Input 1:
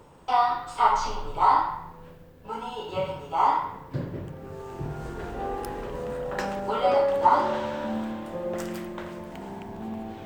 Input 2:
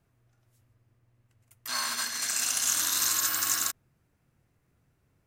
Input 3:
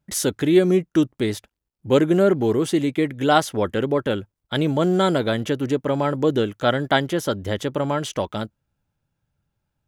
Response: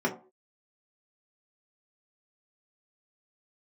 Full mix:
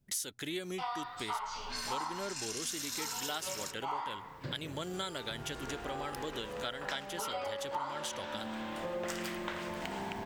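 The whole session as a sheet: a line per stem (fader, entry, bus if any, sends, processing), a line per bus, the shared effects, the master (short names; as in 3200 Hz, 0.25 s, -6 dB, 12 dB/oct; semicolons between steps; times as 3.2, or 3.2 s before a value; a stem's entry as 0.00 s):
-1.5 dB, 0.50 s, no send, LPF 2600 Hz 6 dB/oct; AGC gain up to 11 dB; auto duck -8 dB, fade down 1.90 s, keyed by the third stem
-5.5 dB, 0.00 s, send -8.5 dB, tilt -3 dB/oct; low-pass opened by the level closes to 700 Hz, open at -30.5 dBFS
-9.0 dB, 0.00 s, no send, dry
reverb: on, pre-delay 3 ms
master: tilt shelf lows -10 dB, about 1400 Hz; compressor 4:1, threshold -36 dBFS, peak gain reduction 13.5 dB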